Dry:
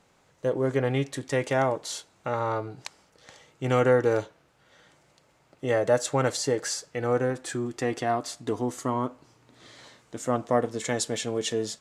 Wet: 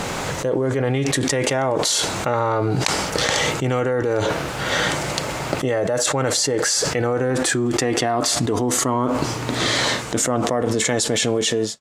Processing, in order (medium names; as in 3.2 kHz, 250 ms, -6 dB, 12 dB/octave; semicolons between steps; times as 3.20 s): fade out at the end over 3.72 s; level flattener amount 100%; trim -2.5 dB